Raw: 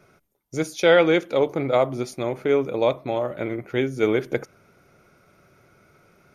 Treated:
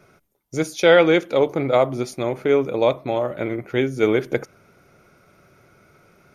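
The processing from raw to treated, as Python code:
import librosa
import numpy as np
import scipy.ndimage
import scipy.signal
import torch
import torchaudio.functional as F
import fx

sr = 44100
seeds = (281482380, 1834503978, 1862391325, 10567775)

y = x * 10.0 ** (2.5 / 20.0)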